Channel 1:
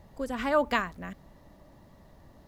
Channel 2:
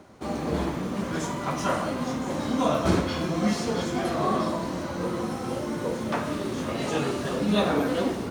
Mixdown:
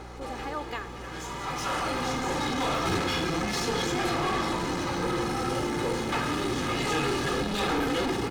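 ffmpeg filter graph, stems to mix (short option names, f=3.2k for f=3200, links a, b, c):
-filter_complex "[0:a]acompressor=threshold=-34dB:ratio=1.5,volume=-5dB,asplit=2[a][b];[1:a]asubboost=boost=7.5:cutoff=180,highpass=120,asplit=2[c][d];[d]highpass=f=720:p=1,volume=31dB,asoftclip=type=tanh:threshold=-6dB[e];[c][e]amix=inputs=2:normalize=0,lowpass=f=5.4k:p=1,volume=-6dB,volume=-14dB,asplit=2[f][g];[g]volume=-18dB[h];[b]apad=whole_len=366357[i];[f][i]sidechaincompress=threshold=-45dB:ratio=4:attack=6.2:release=928[j];[h]aecho=0:1:183:1[k];[a][j][k]amix=inputs=3:normalize=0,aecho=1:1:2.4:0.59,aeval=exprs='val(0)+0.00631*(sin(2*PI*60*n/s)+sin(2*PI*2*60*n/s)/2+sin(2*PI*3*60*n/s)/3+sin(2*PI*4*60*n/s)/4+sin(2*PI*5*60*n/s)/5)':c=same"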